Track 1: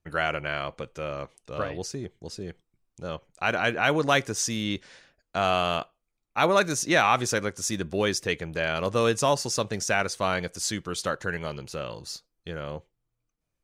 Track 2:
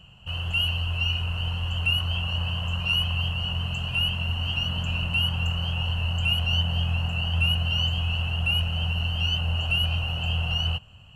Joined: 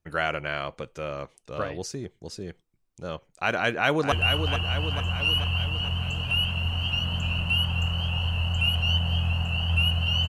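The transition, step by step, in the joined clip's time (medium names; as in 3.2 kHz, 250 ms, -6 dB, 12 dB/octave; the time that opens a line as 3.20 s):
track 1
3.58–4.12 s: echo throw 440 ms, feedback 60%, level -7 dB
4.12 s: go over to track 2 from 1.76 s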